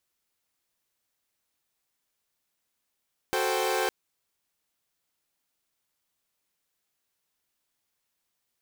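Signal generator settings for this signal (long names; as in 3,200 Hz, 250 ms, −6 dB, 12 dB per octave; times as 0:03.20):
held notes F#4/A4/C5/G5 saw, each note −28 dBFS 0.56 s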